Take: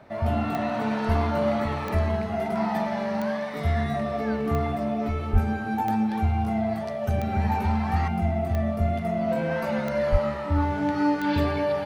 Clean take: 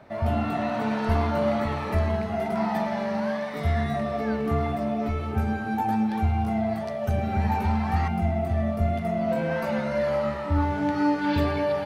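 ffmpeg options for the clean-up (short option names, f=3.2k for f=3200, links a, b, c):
-filter_complex "[0:a]adeclick=t=4,asplit=3[a][b][c];[a]afade=t=out:st=5.32:d=0.02[d];[b]highpass=f=140:w=0.5412,highpass=f=140:w=1.3066,afade=t=in:st=5.32:d=0.02,afade=t=out:st=5.44:d=0.02[e];[c]afade=t=in:st=5.44:d=0.02[f];[d][e][f]amix=inputs=3:normalize=0,asplit=3[g][h][i];[g]afade=t=out:st=10.11:d=0.02[j];[h]highpass=f=140:w=0.5412,highpass=f=140:w=1.3066,afade=t=in:st=10.11:d=0.02,afade=t=out:st=10.23:d=0.02[k];[i]afade=t=in:st=10.23:d=0.02[l];[j][k][l]amix=inputs=3:normalize=0"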